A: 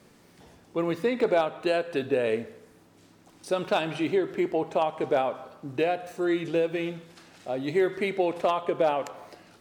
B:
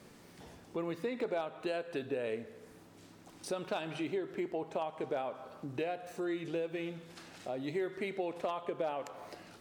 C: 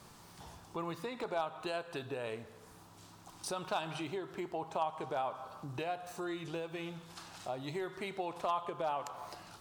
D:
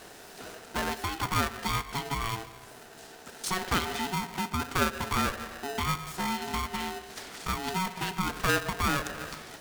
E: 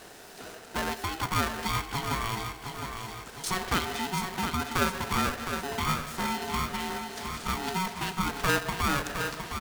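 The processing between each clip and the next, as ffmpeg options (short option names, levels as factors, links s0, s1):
-af "acompressor=threshold=0.00794:ratio=2"
-af "equalizer=f=250:t=o:w=1:g=-9,equalizer=f=500:t=o:w=1:g=-9,equalizer=f=1000:t=o:w=1:g=6,equalizer=f=2000:t=o:w=1:g=-8,volume=1.68"
-af "aeval=exprs='val(0)*sgn(sin(2*PI*560*n/s))':c=same,volume=2.51"
-af "aecho=1:1:712|1424|2136|2848|3560|4272:0.447|0.219|0.107|0.0526|0.0258|0.0126"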